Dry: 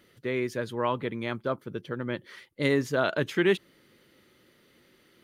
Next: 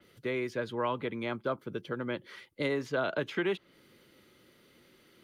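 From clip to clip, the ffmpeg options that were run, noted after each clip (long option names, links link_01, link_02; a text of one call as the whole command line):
ffmpeg -i in.wav -filter_complex "[0:a]bandreject=frequency=1800:width=13,acrossover=split=180|530|1200|5200[link_01][link_02][link_03][link_04][link_05];[link_01]acompressor=threshold=-47dB:ratio=4[link_06];[link_02]acompressor=threshold=-35dB:ratio=4[link_07];[link_03]acompressor=threshold=-33dB:ratio=4[link_08];[link_04]acompressor=threshold=-37dB:ratio=4[link_09];[link_05]acompressor=threshold=-60dB:ratio=4[link_10];[link_06][link_07][link_08][link_09][link_10]amix=inputs=5:normalize=0,adynamicequalizer=threshold=0.00224:dfrequency=4700:dqfactor=0.7:tfrequency=4700:tqfactor=0.7:attack=5:release=100:ratio=0.375:range=3:mode=cutabove:tftype=highshelf" out.wav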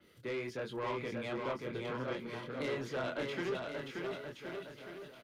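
ffmpeg -i in.wav -af "flanger=delay=22.5:depth=3.5:speed=1.4,asoftclip=type=tanh:threshold=-32.5dB,aecho=1:1:580|1073|1492|1848|2151:0.631|0.398|0.251|0.158|0.1" out.wav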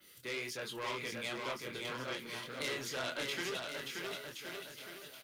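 ffmpeg -i in.wav -af "crystalizer=i=9.5:c=0,flanger=delay=5.2:depth=8.8:regen=-75:speed=1.9:shape=sinusoidal,volume=-2dB" out.wav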